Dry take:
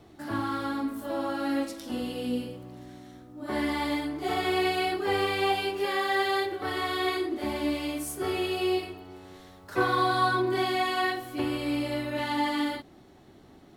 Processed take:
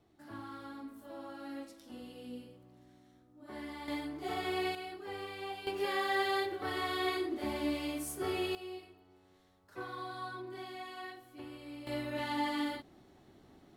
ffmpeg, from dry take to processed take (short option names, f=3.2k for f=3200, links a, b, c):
-af "asetnsamples=n=441:p=0,asendcmd='3.88 volume volume -8.5dB;4.75 volume volume -16dB;5.67 volume volume -5.5dB;8.55 volume volume -18dB;11.87 volume volume -6.5dB',volume=-15.5dB"